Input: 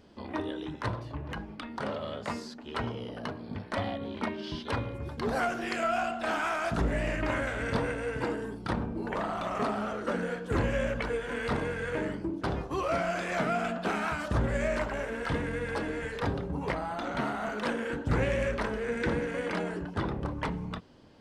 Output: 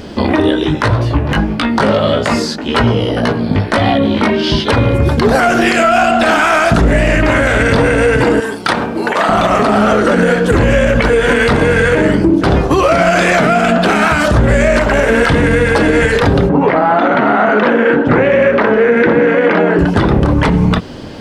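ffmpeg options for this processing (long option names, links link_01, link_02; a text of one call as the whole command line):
ffmpeg -i in.wav -filter_complex "[0:a]asplit=3[link_01][link_02][link_03];[link_01]afade=type=out:start_time=0.54:duration=0.02[link_04];[link_02]flanger=delay=17:depth=2.4:speed=1.8,afade=type=in:start_time=0.54:duration=0.02,afade=type=out:start_time=4.68:duration=0.02[link_05];[link_03]afade=type=in:start_time=4.68:duration=0.02[link_06];[link_04][link_05][link_06]amix=inputs=3:normalize=0,asettb=1/sr,asplit=3[link_07][link_08][link_09];[link_07]atrim=end=8.404[link_10];[link_08]atrim=start=8.4:end=9.29,asetpts=PTS-STARTPTS,afade=type=in:duration=0.004:curve=qsin,afade=type=out:start_time=0.886:duration=0.004:curve=qsin,highpass=frequency=1100:poles=1[link_11];[link_09]atrim=start=9.286[link_12];[link_10][link_11]acrossfade=duration=0.004:curve1=hsin:curve2=qsin[link_13];[link_13][link_12]acrossfade=duration=0.004:curve1=qsin:curve2=hsin,asettb=1/sr,asplit=3[link_14][link_15][link_16];[link_14]atrim=end=16.494[link_17];[link_15]atrim=start=16.49:end=19.79,asetpts=PTS-STARTPTS,afade=type=in:duration=0.004:curve=qsin,afade=type=out:start_time=3.296:duration=0.004:curve=qsin,highpass=220,lowpass=2100[link_18];[link_16]atrim=start=19.786[link_19];[link_17][link_18]acrossfade=duration=0.004:curve1=hsin:curve2=qsin[link_20];[link_20][link_19]acrossfade=duration=0.004:curve1=qsin:curve2=hsin,equalizer=frequency=1000:width=2.3:gain=-3,acompressor=threshold=-36dB:ratio=2,alimiter=level_in=29.5dB:limit=-1dB:release=50:level=0:latency=1,volume=-1dB" out.wav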